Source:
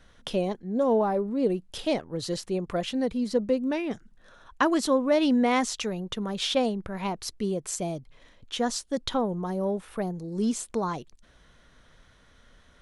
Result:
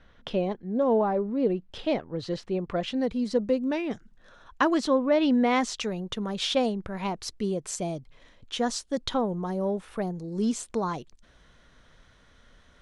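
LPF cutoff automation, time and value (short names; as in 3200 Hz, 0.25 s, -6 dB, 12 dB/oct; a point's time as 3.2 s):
2.54 s 3400 Hz
3.21 s 7400 Hz
4.63 s 7400 Hz
5.12 s 3400 Hz
5.93 s 8700 Hz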